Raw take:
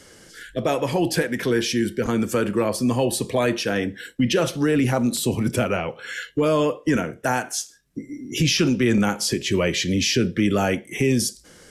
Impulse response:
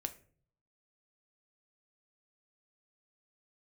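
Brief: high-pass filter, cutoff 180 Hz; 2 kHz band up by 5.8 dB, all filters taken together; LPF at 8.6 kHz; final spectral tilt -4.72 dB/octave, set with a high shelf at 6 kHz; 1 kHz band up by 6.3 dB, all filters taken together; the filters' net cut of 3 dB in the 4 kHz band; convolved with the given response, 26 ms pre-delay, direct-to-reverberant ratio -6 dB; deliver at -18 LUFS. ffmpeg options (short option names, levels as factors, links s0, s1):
-filter_complex "[0:a]highpass=180,lowpass=8600,equalizer=f=1000:t=o:g=7,equalizer=f=2000:t=o:g=7,equalizer=f=4000:t=o:g=-6,highshelf=f=6000:g=-3.5,asplit=2[s0][s1];[1:a]atrim=start_sample=2205,adelay=26[s2];[s1][s2]afir=irnorm=-1:irlink=0,volume=2.24[s3];[s0][s3]amix=inputs=2:normalize=0,volume=0.631"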